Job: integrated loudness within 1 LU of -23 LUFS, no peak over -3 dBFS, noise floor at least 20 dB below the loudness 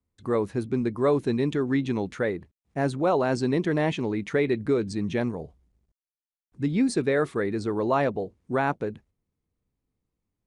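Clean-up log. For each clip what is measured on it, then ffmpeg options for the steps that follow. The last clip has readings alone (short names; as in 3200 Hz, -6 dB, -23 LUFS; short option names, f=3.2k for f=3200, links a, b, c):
loudness -26.5 LUFS; peak -11.0 dBFS; loudness target -23.0 LUFS
-> -af "volume=3.5dB"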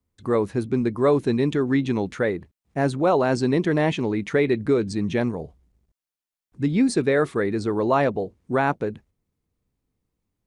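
loudness -23.0 LUFS; peak -7.5 dBFS; noise floor -91 dBFS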